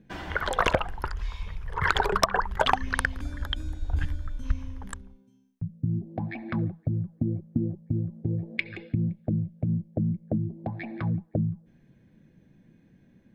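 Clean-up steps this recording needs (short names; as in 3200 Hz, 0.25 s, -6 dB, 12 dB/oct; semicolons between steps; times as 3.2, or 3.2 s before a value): clip repair -10 dBFS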